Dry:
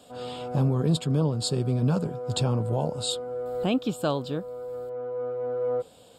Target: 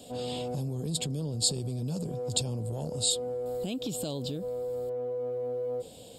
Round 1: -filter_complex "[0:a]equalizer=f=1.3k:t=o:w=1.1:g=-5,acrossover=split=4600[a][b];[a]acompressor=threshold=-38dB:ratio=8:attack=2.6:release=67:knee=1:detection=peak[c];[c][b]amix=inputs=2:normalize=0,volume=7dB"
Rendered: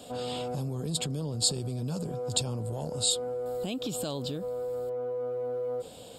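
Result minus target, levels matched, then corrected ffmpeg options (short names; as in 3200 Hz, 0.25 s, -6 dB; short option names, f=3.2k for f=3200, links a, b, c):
1000 Hz band +3.0 dB
-filter_complex "[0:a]equalizer=f=1.3k:t=o:w=1.1:g=-17,acrossover=split=4600[a][b];[a]acompressor=threshold=-38dB:ratio=8:attack=2.6:release=67:knee=1:detection=peak[c];[c][b]amix=inputs=2:normalize=0,volume=7dB"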